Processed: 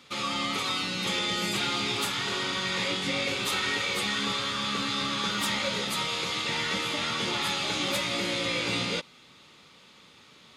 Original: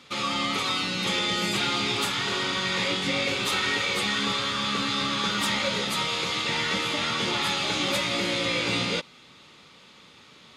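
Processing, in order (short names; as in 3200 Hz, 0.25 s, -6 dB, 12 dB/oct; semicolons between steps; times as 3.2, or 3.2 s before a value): high shelf 11000 Hz +7 dB; gain -3 dB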